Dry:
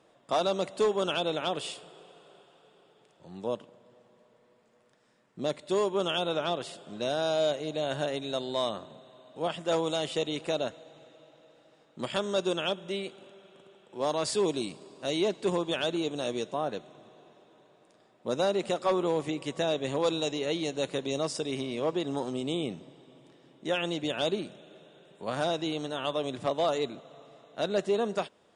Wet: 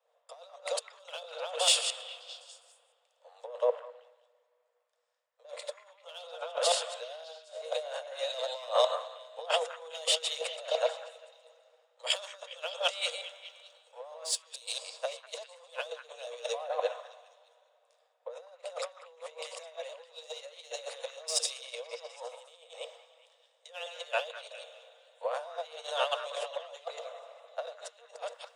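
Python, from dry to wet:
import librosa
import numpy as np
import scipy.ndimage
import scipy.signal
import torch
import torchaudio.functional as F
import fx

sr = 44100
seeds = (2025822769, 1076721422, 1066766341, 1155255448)

p1 = fx.reverse_delay(x, sr, ms=112, wet_db=-6)
p2 = 10.0 ** (-32.0 / 20.0) * np.tanh(p1 / 10.0 ** (-32.0 / 20.0))
p3 = p1 + F.gain(torch.from_numpy(p2), -3.5).numpy()
p4 = fx.peak_eq(p3, sr, hz=1700.0, db=-5.0, octaves=2.1)
p5 = fx.over_compress(p4, sr, threshold_db=-34.0, ratio=-0.5)
p6 = scipy.signal.sosfilt(scipy.signal.cheby1(10, 1.0, 470.0, 'highpass', fs=sr, output='sos'), p5)
p7 = fx.echo_stepped(p6, sr, ms=204, hz=1500.0, octaves=0.7, feedback_pct=70, wet_db=-4.5)
y = fx.band_widen(p7, sr, depth_pct=100)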